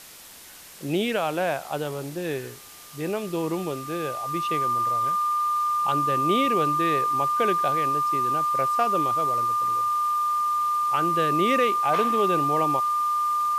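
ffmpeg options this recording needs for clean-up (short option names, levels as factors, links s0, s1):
-af "adeclick=t=4,bandreject=f=1200:w=30,afwtdn=0.0063"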